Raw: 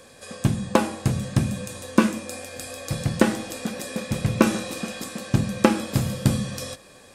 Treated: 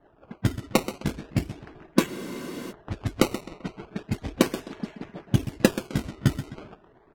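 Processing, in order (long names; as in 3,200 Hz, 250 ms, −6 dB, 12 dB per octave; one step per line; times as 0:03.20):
harmonic-percussive split with one part muted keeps percussive
high-frequency loss of the air 68 metres
notch filter 1,300 Hz, Q 5.7
repeating echo 130 ms, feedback 33%, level −12.5 dB
sample-and-hold swept by an LFO 18×, swing 100% 0.36 Hz
low-pass that shuts in the quiet parts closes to 1,500 Hz, open at −22 dBFS
dynamic equaliser 910 Hz, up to −4 dB, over −40 dBFS, Q 0.83
frozen spectrum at 0:02.10, 0.60 s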